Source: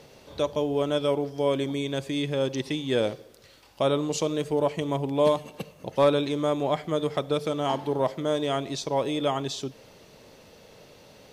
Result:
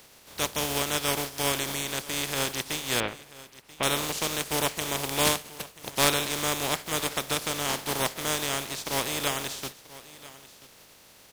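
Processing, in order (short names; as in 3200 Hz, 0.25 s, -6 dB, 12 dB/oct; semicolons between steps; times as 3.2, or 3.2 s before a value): spectral contrast lowered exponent 0.31; 3–3.83 LPF 3000 Hz 24 dB/oct; on a send: echo 0.986 s -18.5 dB; on the sum: gain -2.5 dB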